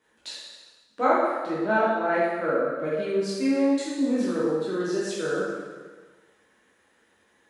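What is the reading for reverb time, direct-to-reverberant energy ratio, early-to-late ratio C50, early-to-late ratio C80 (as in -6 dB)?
1.4 s, -8.5 dB, -1.5 dB, 1.0 dB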